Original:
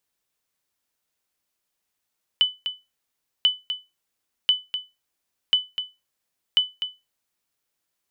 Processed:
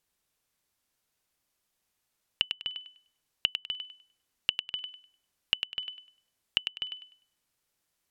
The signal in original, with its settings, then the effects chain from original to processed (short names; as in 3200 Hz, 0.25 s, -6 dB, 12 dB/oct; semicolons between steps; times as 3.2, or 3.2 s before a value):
sonar ping 3000 Hz, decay 0.23 s, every 1.04 s, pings 5, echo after 0.25 s, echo -9.5 dB -10 dBFS
treble ducked by the level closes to 680 Hz, closed at -21.5 dBFS; low shelf 180 Hz +6.5 dB; on a send: thinning echo 0.1 s, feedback 27%, level -7 dB